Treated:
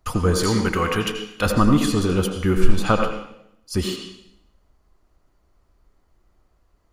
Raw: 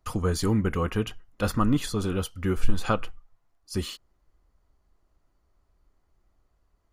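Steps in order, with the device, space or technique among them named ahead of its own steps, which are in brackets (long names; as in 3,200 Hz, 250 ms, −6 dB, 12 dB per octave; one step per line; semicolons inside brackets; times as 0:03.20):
filtered reverb send (on a send: high-pass filter 170 Hz 24 dB per octave + low-pass filter 6,900 Hz 12 dB per octave + convolution reverb RT60 0.80 s, pre-delay 75 ms, DRR 4 dB)
0:00.43–0:01.46: on the sum: tilt shelving filter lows −5.5 dB, about 760 Hz
level +6 dB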